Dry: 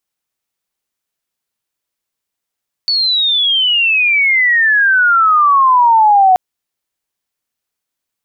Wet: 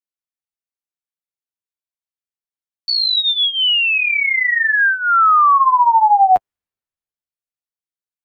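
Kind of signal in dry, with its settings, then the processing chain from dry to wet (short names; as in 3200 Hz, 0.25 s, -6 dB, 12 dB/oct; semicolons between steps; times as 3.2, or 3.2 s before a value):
chirp logarithmic 4500 Hz -> 730 Hz -11 dBFS -> -5 dBFS 3.48 s
flange 0.63 Hz, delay 9.3 ms, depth 6 ms, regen -11%; three-band expander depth 40%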